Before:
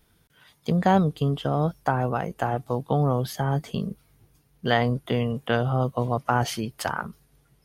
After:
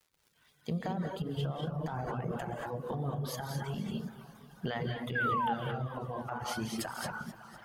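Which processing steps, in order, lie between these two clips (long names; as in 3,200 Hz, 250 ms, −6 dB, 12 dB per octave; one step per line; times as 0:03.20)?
fade in at the beginning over 1.92 s
on a send: feedback echo with a band-pass in the loop 553 ms, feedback 71%, band-pass 1,700 Hz, level −22 dB
on the sum: surface crackle 230 per second −55 dBFS
downward compressor 20 to 1, threshold −30 dBFS, peak gain reduction 15 dB
0:01.59–0:02.42: spectral tilt −1.5 dB per octave
reverb whose tail is shaped and stops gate 250 ms rising, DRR 0 dB
brickwall limiter −24.5 dBFS, peak gain reduction 10 dB
reverb reduction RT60 1.7 s
0:05.15–0:05.54: sound drawn into the spectrogram fall 780–1,700 Hz −31 dBFS
feedback echo with a swinging delay time 245 ms, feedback 63%, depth 138 cents, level −16 dB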